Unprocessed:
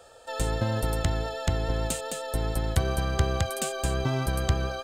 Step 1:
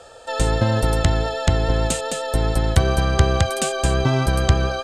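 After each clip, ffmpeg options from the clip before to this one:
ffmpeg -i in.wav -af "lowpass=8900,volume=8.5dB" out.wav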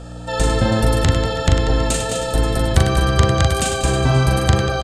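ffmpeg -i in.wav -filter_complex "[0:a]aeval=exprs='val(0)+0.02*(sin(2*PI*60*n/s)+sin(2*PI*2*60*n/s)/2+sin(2*PI*3*60*n/s)/3+sin(2*PI*4*60*n/s)/4+sin(2*PI*5*60*n/s)/5)':channel_layout=same,asplit=2[link_01][link_02];[link_02]aecho=0:1:40|100|190|325|527.5:0.631|0.398|0.251|0.158|0.1[link_03];[link_01][link_03]amix=inputs=2:normalize=0,volume=1dB" out.wav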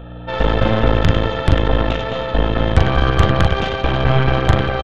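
ffmpeg -i in.wav -af "aresample=8000,aresample=44100,aeval=exprs='0.841*(cos(1*acos(clip(val(0)/0.841,-1,1)))-cos(1*PI/2))+0.15*(cos(6*acos(clip(val(0)/0.841,-1,1)))-cos(6*PI/2))':channel_layout=same" out.wav

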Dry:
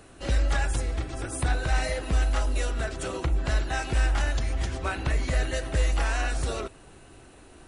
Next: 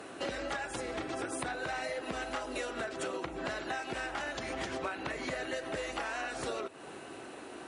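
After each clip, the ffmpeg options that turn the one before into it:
ffmpeg -i in.wav -af "highpass=270,aemphasis=mode=reproduction:type=cd,acompressor=threshold=-41dB:ratio=12,volume=7.5dB" out.wav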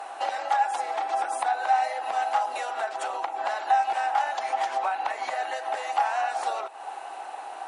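ffmpeg -i in.wav -af "highpass=frequency=800:width_type=q:width=8.5,volume=2dB" out.wav

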